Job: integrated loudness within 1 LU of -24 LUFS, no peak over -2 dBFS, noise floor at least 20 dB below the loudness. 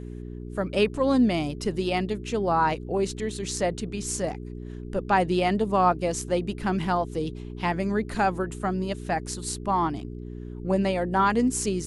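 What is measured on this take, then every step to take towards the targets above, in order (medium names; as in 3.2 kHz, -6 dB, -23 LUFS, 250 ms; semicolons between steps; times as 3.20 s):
hum 60 Hz; highest harmonic 420 Hz; hum level -34 dBFS; loudness -26.0 LUFS; peak level -9.0 dBFS; loudness target -24.0 LUFS
-> de-hum 60 Hz, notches 7; trim +2 dB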